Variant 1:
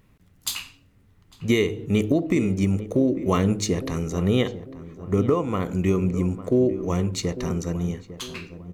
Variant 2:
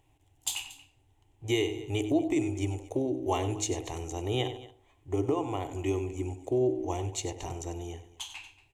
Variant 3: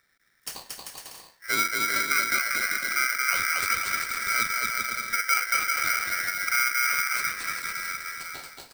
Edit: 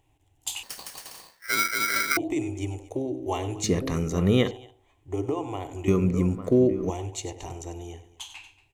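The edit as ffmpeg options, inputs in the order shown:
-filter_complex "[0:a]asplit=2[a][b];[1:a]asplit=4[c][d][e][f];[c]atrim=end=0.632[g];[2:a]atrim=start=0.628:end=2.172[h];[d]atrim=start=2.168:end=3.642[i];[a]atrim=start=3.638:end=4.512[j];[e]atrim=start=4.508:end=5.882[k];[b]atrim=start=5.878:end=6.902[l];[f]atrim=start=6.898[m];[g][h]acrossfade=d=0.004:c1=hsin:c2=hsin[n];[n][i]acrossfade=d=0.004:c1=hsin:c2=hsin[o];[o][j]acrossfade=d=0.004:c1=hsin:c2=hsin[p];[p][k]acrossfade=d=0.004:c1=hsin:c2=hsin[q];[q][l]acrossfade=d=0.004:c1=hsin:c2=hsin[r];[r][m]acrossfade=d=0.004:c1=hsin:c2=hsin"

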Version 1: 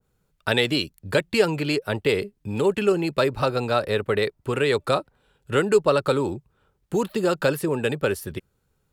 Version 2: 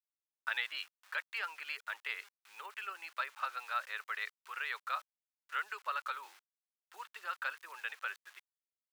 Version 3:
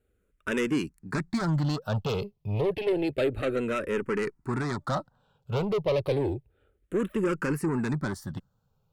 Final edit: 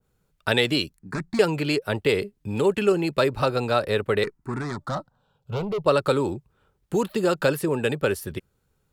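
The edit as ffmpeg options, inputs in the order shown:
-filter_complex "[2:a]asplit=2[a][b];[0:a]asplit=3[c][d][e];[c]atrim=end=0.972[f];[a]atrim=start=0.968:end=1.392[g];[d]atrim=start=1.388:end=4.242[h];[b]atrim=start=4.238:end=5.862[i];[e]atrim=start=5.858[j];[f][g]acrossfade=d=0.004:c1=hsin:c2=hsin[k];[k][h]acrossfade=d=0.004:c1=hsin:c2=hsin[l];[l][i]acrossfade=d=0.004:c1=hsin:c2=hsin[m];[m][j]acrossfade=d=0.004:c1=hsin:c2=hsin"

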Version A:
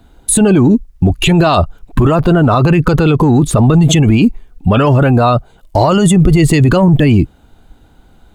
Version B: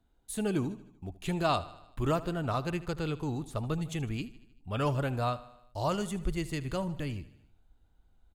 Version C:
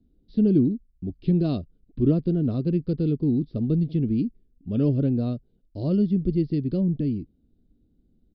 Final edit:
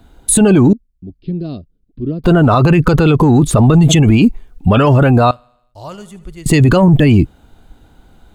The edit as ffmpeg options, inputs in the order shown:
-filter_complex "[0:a]asplit=3[a][b][c];[a]atrim=end=0.732[d];[2:a]atrim=start=0.728:end=2.242[e];[b]atrim=start=2.238:end=5.312[f];[1:a]atrim=start=5.308:end=6.462[g];[c]atrim=start=6.458[h];[d][e]acrossfade=d=0.004:c1=hsin:c2=hsin[i];[i][f]acrossfade=d=0.004:c1=hsin:c2=hsin[j];[j][g]acrossfade=d=0.004:c1=hsin:c2=hsin[k];[k][h]acrossfade=d=0.004:c1=hsin:c2=hsin"

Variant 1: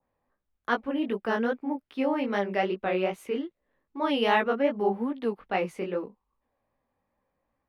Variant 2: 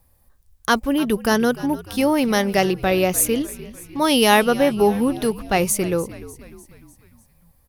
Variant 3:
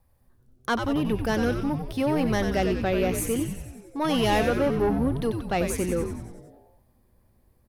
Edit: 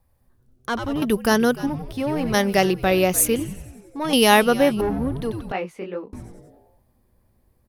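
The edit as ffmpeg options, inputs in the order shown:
-filter_complex "[1:a]asplit=3[a][b][c];[2:a]asplit=5[d][e][f][g][h];[d]atrim=end=1.022[i];[a]atrim=start=1.018:end=1.672[j];[e]atrim=start=1.668:end=2.342[k];[b]atrim=start=2.338:end=3.362[l];[f]atrim=start=3.358:end=4.132[m];[c]atrim=start=4.128:end=4.812[n];[g]atrim=start=4.808:end=5.522[o];[0:a]atrim=start=5.518:end=6.132[p];[h]atrim=start=6.128[q];[i][j]acrossfade=d=0.004:c1=hsin:c2=hsin[r];[r][k]acrossfade=d=0.004:c1=hsin:c2=hsin[s];[s][l]acrossfade=d=0.004:c1=hsin:c2=hsin[t];[t][m]acrossfade=d=0.004:c1=hsin:c2=hsin[u];[u][n]acrossfade=d=0.004:c1=hsin:c2=hsin[v];[v][o]acrossfade=d=0.004:c1=hsin:c2=hsin[w];[w][p]acrossfade=d=0.004:c1=hsin:c2=hsin[x];[x][q]acrossfade=d=0.004:c1=hsin:c2=hsin"

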